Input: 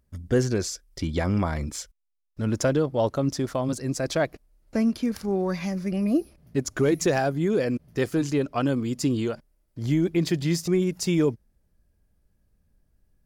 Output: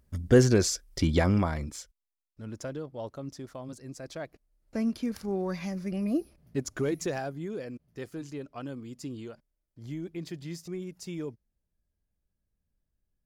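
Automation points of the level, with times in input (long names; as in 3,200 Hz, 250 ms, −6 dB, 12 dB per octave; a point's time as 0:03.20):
0:01.13 +3 dB
0:01.72 −6.5 dB
0:02.40 −14.5 dB
0:04.23 −14.5 dB
0:04.88 −5.5 dB
0:06.62 −5.5 dB
0:07.73 −14.5 dB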